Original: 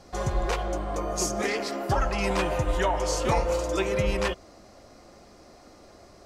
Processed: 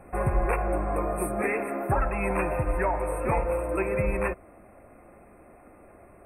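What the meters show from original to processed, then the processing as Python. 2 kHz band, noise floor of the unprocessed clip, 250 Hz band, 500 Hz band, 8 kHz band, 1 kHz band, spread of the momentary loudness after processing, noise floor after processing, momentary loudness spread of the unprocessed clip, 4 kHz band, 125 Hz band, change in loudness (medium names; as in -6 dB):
0.0 dB, -52 dBFS, 0.0 dB, 0.0 dB, -10.5 dB, 0.0 dB, 3 LU, -53 dBFS, 5 LU, under -40 dB, 0.0 dB, -0.5 dB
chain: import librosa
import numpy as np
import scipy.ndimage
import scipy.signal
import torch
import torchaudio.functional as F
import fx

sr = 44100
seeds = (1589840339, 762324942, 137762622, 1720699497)

y = fx.rider(x, sr, range_db=10, speed_s=0.5)
y = fx.brickwall_bandstop(y, sr, low_hz=2700.0, high_hz=8100.0)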